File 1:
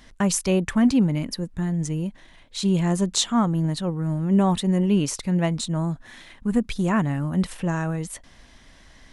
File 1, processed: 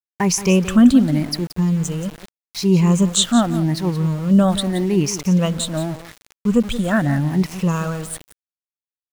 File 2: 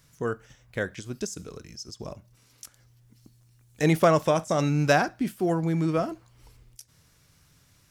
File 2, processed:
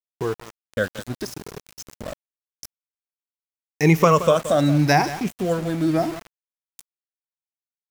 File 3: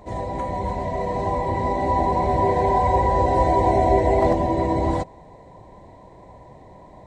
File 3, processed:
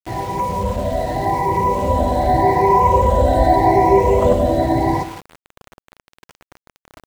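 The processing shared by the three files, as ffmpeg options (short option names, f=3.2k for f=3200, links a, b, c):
-filter_complex "[0:a]afftfilt=real='re*pow(10,13/40*sin(2*PI*(0.78*log(max(b,1)*sr/1024/100)/log(2)-(0.84)*(pts-256)/sr)))':imag='im*pow(10,13/40*sin(2*PI*(0.78*log(max(b,1)*sr/1024/100)/log(2)-(0.84)*(pts-256)/sr)))':win_size=1024:overlap=0.75,aeval=exprs='val(0)+0.00224*(sin(2*PI*60*n/s)+sin(2*PI*2*60*n/s)/2+sin(2*PI*3*60*n/s)/3+sin(2*PI*4*60*n/s)/4+sin(2*PI*5*60*n/s)/5)':c=same,asplit=2[a][b];[b]aecho=0:1:175|350:0.211|0.0338[c];[a][c]amix=inputs=2:normalize=0,aeval=exprs='val(0)*gte(abs(val(0)),0.02)':c=same,volume=2.5dB"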